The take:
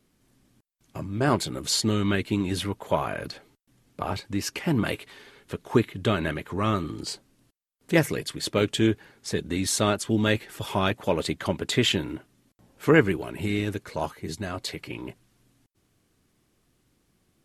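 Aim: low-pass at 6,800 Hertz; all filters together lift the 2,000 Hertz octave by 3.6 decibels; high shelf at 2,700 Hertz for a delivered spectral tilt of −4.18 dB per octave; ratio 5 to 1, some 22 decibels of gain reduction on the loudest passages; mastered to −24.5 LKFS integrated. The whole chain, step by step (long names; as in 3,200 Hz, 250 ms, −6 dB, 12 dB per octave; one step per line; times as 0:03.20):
low-pass filter 6,800 Hz
parametric band 2,000 Hz +8 dB
high-shelf EQ 2,700 Hz −8.5 dB
downward compressor 5 to 1, threshold −39 dBFS
level +18 dB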